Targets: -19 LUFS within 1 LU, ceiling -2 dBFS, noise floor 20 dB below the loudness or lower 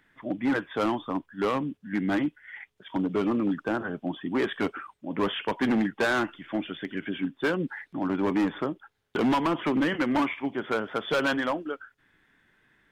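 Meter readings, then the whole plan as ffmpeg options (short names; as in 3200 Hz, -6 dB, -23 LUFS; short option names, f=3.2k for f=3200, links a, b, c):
loudness -28.5 LUFS; peak -18.5 dBFS; loudness target -19.0 LUFS
-> -af "volume=9.5dB"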